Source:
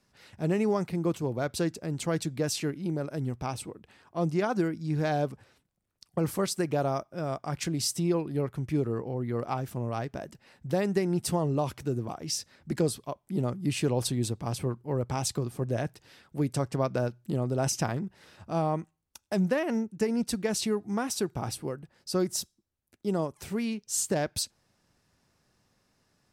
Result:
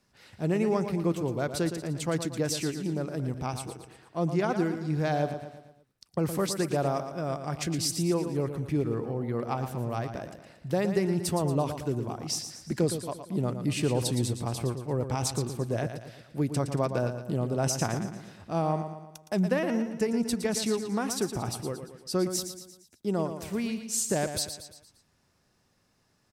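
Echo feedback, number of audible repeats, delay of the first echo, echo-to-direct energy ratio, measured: 48%, 5, 0.115 s, -8.0 dB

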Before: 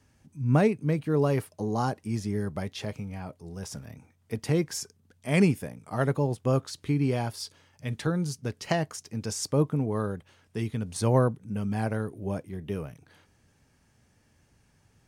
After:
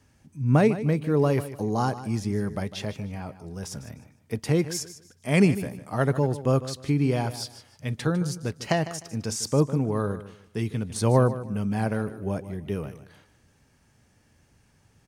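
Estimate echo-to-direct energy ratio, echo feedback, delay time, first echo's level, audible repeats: -13.5 dB, 26%, 0.152 s, -14.0 dB, 2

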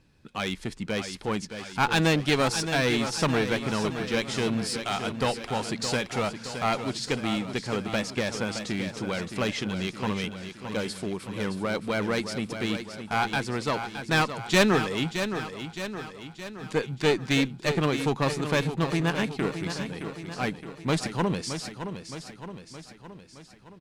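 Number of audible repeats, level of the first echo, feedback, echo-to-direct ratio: 6, -9.0 dB, 56%, -7.5 dB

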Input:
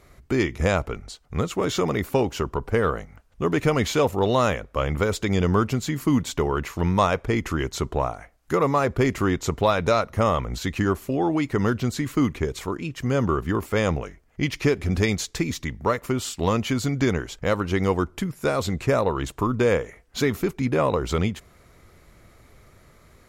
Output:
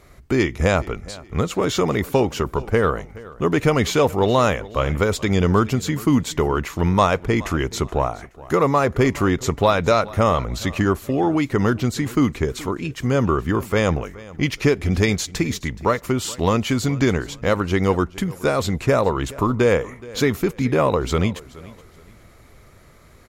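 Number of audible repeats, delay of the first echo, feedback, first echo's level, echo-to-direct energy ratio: 2, 0.423 s, 31%, -20.0 dB, -19.5 dB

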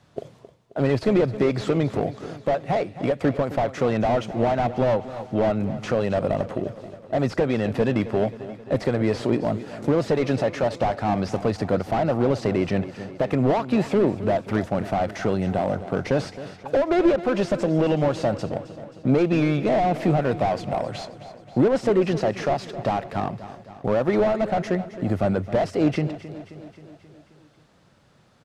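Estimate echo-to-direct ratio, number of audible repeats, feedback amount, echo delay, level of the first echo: -12.5 dB, 5, 60%, 0.266 s, -14.5 dB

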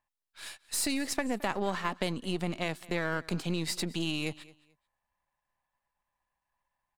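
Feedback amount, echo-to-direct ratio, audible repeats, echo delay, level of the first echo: 23%, -21.5 dB, 2, 0.218 s, -21.5 dB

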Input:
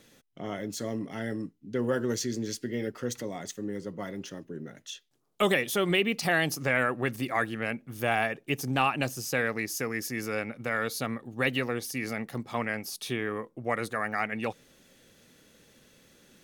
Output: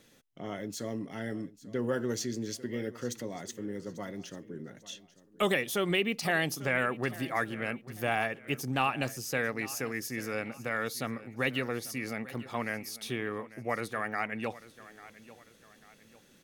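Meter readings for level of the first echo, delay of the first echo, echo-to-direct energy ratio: -18.0 dB, 0.844 s, -17.5 dB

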